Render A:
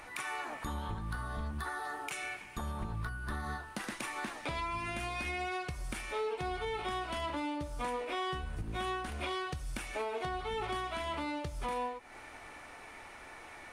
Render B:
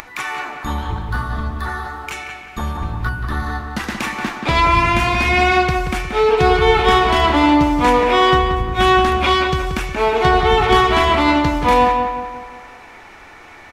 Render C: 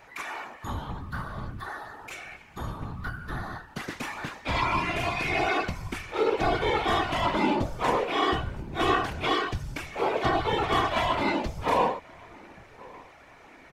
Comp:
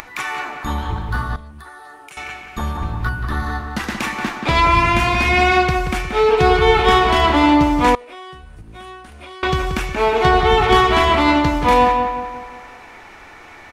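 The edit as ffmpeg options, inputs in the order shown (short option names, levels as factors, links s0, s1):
-filter_complex "[0:a]asplit=2[s0][s1];[1:a]asplit=3[s2][s3][s4];[s2]atrim=end=1.362[s5];[s0]atrim=start=1.358:end=2.172[s6];[s3]atrim=start=2.168:end=7.952[s7];[s1]atrim=start=7.948:end=9.432[s8];[s4]atrim=start=9.428[s9];[s5][s6]acrossfade=d=0.004:c1=hsin:c2=hsin[s10];[s10][s7]acrossfade=d=0.004:c1=hsin:c2=hsin[s11];[s11][s8]acrossfade=d=0.004:c1=hsin:c2=hsin[s12];[s12][s9]acrossfade=d=0.004:c1=hsin:c2=hsin"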